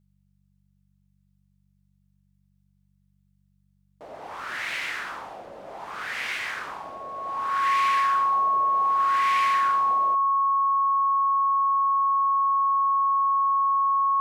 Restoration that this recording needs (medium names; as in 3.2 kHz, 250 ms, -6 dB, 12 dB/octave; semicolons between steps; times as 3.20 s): de-hum 48 Hz, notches 4; band-stop 1.1 kHz, Q 30; inverse comb 71 ms -22 dB